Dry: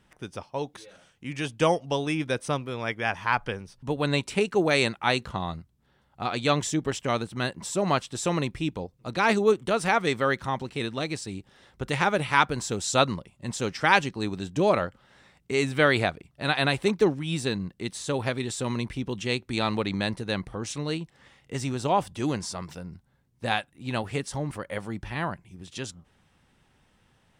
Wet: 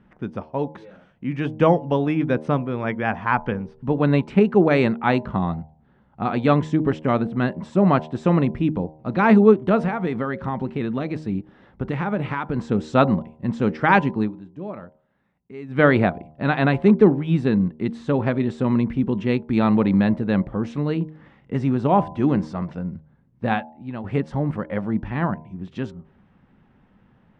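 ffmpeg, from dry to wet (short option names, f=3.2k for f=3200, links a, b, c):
-filter_complex "[0:a]asettb=1/sr,asplit=3[a][b][c];[a]atrim=end=9.784[d];[b]atrim=start=9.78:end=12.59,asetpts=PTS-STARTPTS,afade=t=in:d=0.004:c=qsin,afade=t=out:st=2.806:d=0.004:c=qsin,acompressor=threshold=-27dB:ratio=4:attack=3.2:release=140:knee=1:detection=peak[e];[c]atrim=start=12.586[f];[d][e]acrossfade=d=0.004:c1=hsin:c2=qsin[g];[g][f]acrossfade=d=0.004:c1=qsin:c2=hsin,asplit=4[h][i][j][k];[h]atrim=end=14.32,asetpts=PTS-STARTPTS,afade=t=out:st=14.2:d=0.12:silence=0.125893[l];[i]atrim=start=14.32:end=15.68,asetpts=PTS-STARTPTS,volume=-18dB[m];[j]atrim=start=15.68:end=24.04,asetpts=PTS-STARTPTS,afade=t=in:d=0.12:silence=0.125893,afade=t=out:st=7.84:d=0.52:c=qua:silence=0.281838[n];[k]atrim=start=24.04,asetpts=PTS-STARTPTS,afade=t=in:d=0.004:c=hsin:silence=0.281838[o];[l][m][n][o]concat=n=4:v=0:a=1,lowpass=1.7k,equalizer=f=210:w=1.5:g=9,bandreject=f=77.61:t=h:w=4,bandreject=f=155.22:t=h:w=4,bandreject=f=232.83:t=h:w=4,bandreject=f=310.44:t=h:w=4,bandreject=f=388.05:t=h:w=4,bandreject=f=465.66:t=h:w=4,bandreject=f=543.27:t=h:w=4,bandreject=f=620.88:t=h:w=4,bandreject=f=698.49:t=h:w=4,bandreject=f=776.1:t=h:w=4,bandreject=f=853.71:t=h:w=4,bandreject=f=931.32:t=h:w=4,bandreject=f=1.00893k:t=h:w=4,volume=5dB"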